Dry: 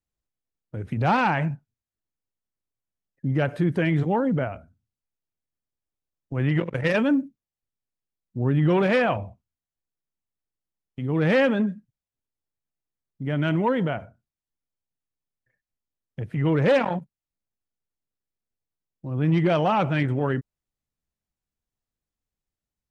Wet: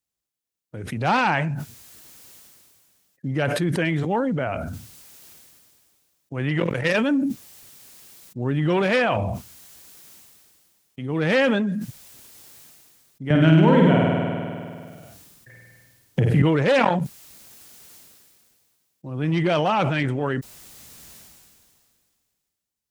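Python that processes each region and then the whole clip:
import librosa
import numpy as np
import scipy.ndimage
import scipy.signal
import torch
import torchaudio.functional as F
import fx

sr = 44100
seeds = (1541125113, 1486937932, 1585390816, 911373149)

y = fx.chain(x, sr, fx.low_shelf(hz=330.0, db=10.5),
    fx.room_flutter(wall_m=8.7, rt60_s=1.2),
    fx.band_squash(depth_pct=70), at=(13.3, 16.42))
y = fx.highpass(y, sr, hz=140.0, slope=6)
y = fx.high_shelf(y, sr, hz=3100.0, db=9.0)
y = fx.sustainer(y, sr, db_per_s=26.0)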